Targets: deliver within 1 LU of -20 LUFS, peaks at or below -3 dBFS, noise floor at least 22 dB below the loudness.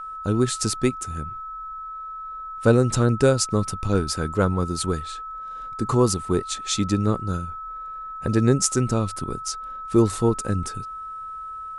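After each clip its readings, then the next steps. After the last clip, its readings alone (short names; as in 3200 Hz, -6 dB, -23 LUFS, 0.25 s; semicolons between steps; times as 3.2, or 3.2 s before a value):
steady tone 1300 Hz; tone level -32 dBFS; loudness -23.5 LUFS; peak -2.5 dBFS; loudness target -20.0 LUFS
-> notch 1300 Hz, Q 30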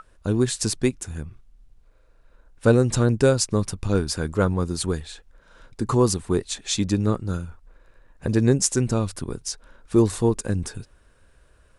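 steady tone none; loudness -23.0 LUFS; peak -2.5 dBFS; loudness target -20.0 LUFS
-> gain +3 dB; limiter -3 dBFS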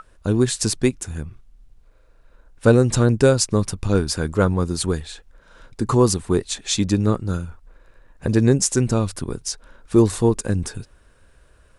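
loudness -20.5 LUFS; peak -3.0 dBFS; noise floor -54 dBFS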